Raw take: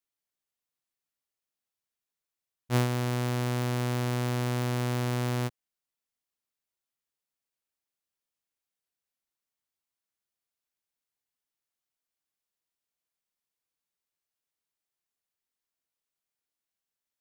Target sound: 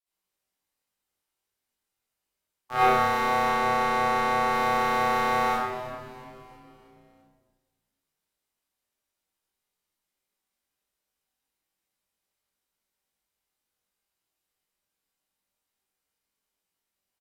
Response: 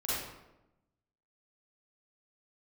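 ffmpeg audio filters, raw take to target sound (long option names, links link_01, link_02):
-filter_complex "[0:a]asettb=1/sr,asplit=3[link_01][link_02][link_03];[link_01]atrim=end=3.414[link_04];[link_02]atrim=start=3.41:end=4.46,asetpts=PTS-STARTPTS,afade=type=in:duration=0.004:curve=qsin,afade=type=out:start_time=1.046:duration=0.004:curve=qsin,lowpass=frequency=3500:poles=1[link_05];[link_03]atrim=start=4.456[link_06];[link_04][link_05]acrossfade=duration=0.004:curve1=hsin:curve2=qsin[link_07];[link_07][link_06]acrossfade=duration=0.004:curve1=qsin:curve2=hsin,asplit=2[link_08][link_09];[link_09]acrusher=bits=2:mix=0:aa=0.5,volume=-8.5dB[link_10];[link_08][link_10]amix=inputs=2:normalize=0,aeval=exprs='val(0)*sin(2*PI*1000*n/s)':channel_layout=same,acrossover=split=2700[link_11][link_12];[link_12]volume=33dB,asoftclip=hard,volume=-33dB[link_13];[link_11][link_13]amix=inputs=2:normalize=0,asplit=2[link_14][link_15];[link_15]adelay=21,volume=-2dB[link_16];[link_14][link_16]amix=inputs=2:normalize=0,asplit=6[link_17][link_18][link_19][link_20][link_21][link_22];[link_18]adelay=333,afreqshift=-120,volume=-14.5dB[link_23];[link_19]adelay=666,afreqshift=-240,volume=-19.9dB[link_24];[link_20]adelay=999,afreqshift=-360,volume=-25.2dB[link_25];[link_21]adelay=1332,afreqshift=-480,volume=-30.6dB[link_26];[link_22]adelay=1665,afreqshift=-600,volume=-35.9dB[link_27];[link_17][link_23][link_24][link_25][link_26][link_27]amix=inputs=6:normalize=0[link_28];[1:a]atrim=start_sample=2205,asetrate=32193,aresample=44100[link_29];[link_28][link_29]afir=irnorm=-1:irlink=0"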